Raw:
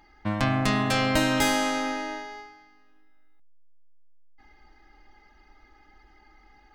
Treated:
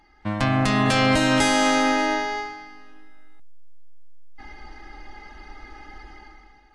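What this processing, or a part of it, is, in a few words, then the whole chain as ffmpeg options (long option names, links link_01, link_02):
low-bitrate web radio: -af "dynaudnorm=framelen=130:gausssize=9:maxgain=14.5dB,alimiter=limit=-8.5dB:level=0:latency=1:release=307" -ar 24000 -c:a aac -b:a 48k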